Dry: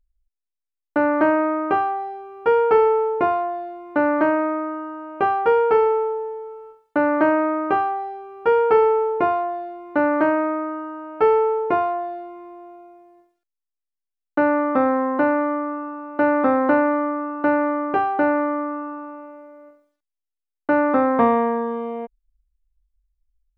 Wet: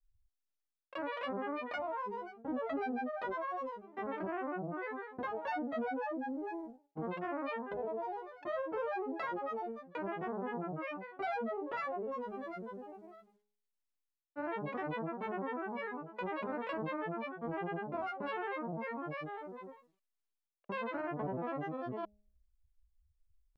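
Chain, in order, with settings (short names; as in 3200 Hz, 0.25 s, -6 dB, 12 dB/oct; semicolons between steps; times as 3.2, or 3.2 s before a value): reverse; compressor 5:1, threshold -34 dBFS, peak gain reduction 19.5 dB; reverse; grains, spray 21 ms, pitch spread up and down by 12 st; de-hum 207.8 Hz, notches 4; gain -2.5 dB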